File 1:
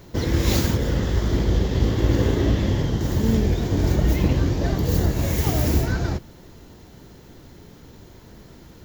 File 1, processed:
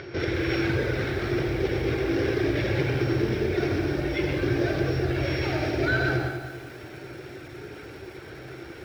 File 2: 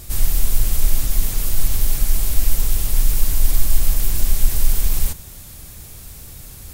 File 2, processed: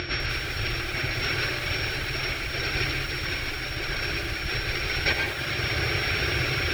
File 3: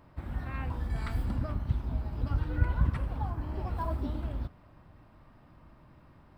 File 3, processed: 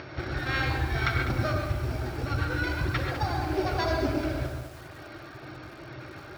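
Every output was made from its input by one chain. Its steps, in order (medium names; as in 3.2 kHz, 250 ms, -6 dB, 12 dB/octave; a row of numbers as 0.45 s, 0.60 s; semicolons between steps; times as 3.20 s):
sorted samples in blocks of 8 samples; reverb removal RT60 1.2 s; peaking EQ 200 Hz -14.5 dB 1.1 oct; reverse; compression 6:1, threshold -28 dBFS; reverse; peak limiter -26.5 dBFS; upward compressor, threshold -47 dBFS; cabinet simulation 110–4300 Hz, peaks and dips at 130 Hz +6 dB, 370 Hz +10 dB, 980 Hz -10 dB, 1.5 kHz +9 dB, 2.3 kHz +9 dB; on a send: feedback echo behind a band-pass 90 ms, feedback 53%, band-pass 610 Hz, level -6.5 dB; on the sum: gated-style reverb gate 160 ms rising, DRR 2.5 dB; bit-crushed delay 200 ms, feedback 55%, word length 9-bit, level -10 dB; peak normalisation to -12 dBFS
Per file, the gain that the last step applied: +8.0 dB, +20.0 dB, +12.5 dB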